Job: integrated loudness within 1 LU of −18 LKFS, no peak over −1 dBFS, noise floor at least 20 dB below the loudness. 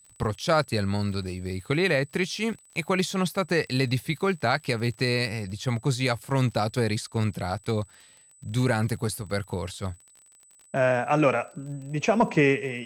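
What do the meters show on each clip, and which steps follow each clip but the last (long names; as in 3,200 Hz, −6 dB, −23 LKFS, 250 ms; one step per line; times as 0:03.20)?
crackle rate 41 per second; interfering tone 8,000 Hz; level of the tone −54 dBFS; integrated loudness −26.5 LKFS; sample peak −11.0 dBFS; target loudness −18.0 LKFS
→ click removal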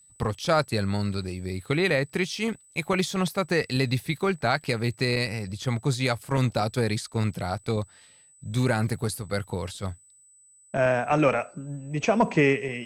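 crackle rate 0.078 per second; interfering tone 8,000 Hz; level of the tone −54 dBFS
→ notch filter 8,000 Hz, Q 30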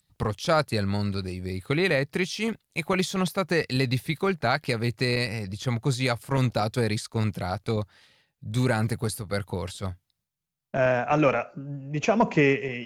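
interfering tone none found; integrated loudness −26.5 LKFS; sample peak −11.5 dBFS; target loudness −18.0 LKFS
→ level +8.5 dB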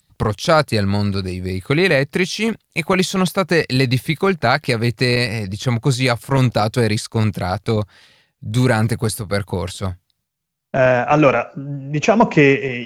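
integrated loudness −18.0 LKFS; sample peak −3.0 dBFS; background noise floor −74 dBFS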